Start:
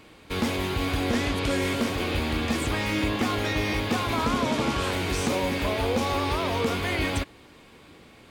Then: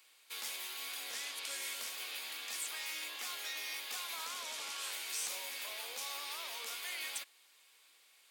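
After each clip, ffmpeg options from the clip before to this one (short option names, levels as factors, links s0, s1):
-af "highpass=470,aderivative,volume=0.75"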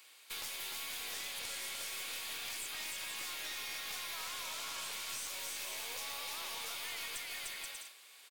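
-filter_complex "[0:a]asplit=2[s0][s1];[s1]aecho=0:1:300|480|588|652.8|691.7:0.631|0.398|0.251|0.158|0.1[s2];[s0][s2]amix=inputs=2:normalize=0,acompressor=threshold=0.00708:ratio=6,aeval=exprs='clip(val(0),-1,0.00422)':c=same,volume=1.88"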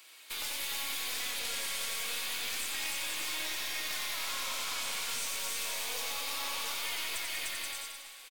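-af "flanger=delay=3:depth=1.5:regen=66:speed=0.28:shape=triangular,aecho=1:1:90|193.5|312.5|449.4|606.8:0.631|0.398|0.251|0.158|0.1,volume=2.51"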